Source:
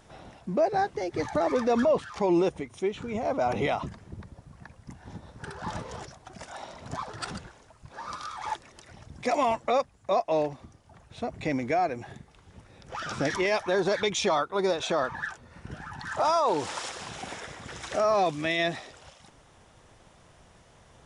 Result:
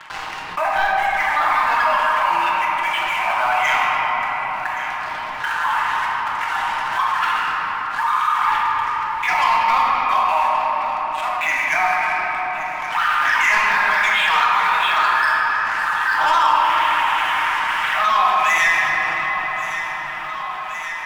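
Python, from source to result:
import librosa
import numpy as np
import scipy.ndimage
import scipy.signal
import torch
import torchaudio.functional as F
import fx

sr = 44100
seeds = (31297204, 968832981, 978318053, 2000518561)

y = scipy.signal.sosfilt(scipy.signal.ellip(3, 1.0, 40, [930.0, 3000.0], 'bandpass', fs=sr, output='sos'), x)
y = y + 0.47 * np.pad(y, (int(6.5 * sr / 1000.0), 0))[:len(y)]
y = fx.leveller(y, sr, passes=3)
y = fx.echo_feedback(y, sr, ms=1123, feedback_pct=56, wet_db=-19.0)
y = fx.room_shoebox(y, sr, seeds[0], volume_m3=210.0, walls='hard', distance_m=0.77)
y = fx.env_flatten(y, sr, amount_pct=50)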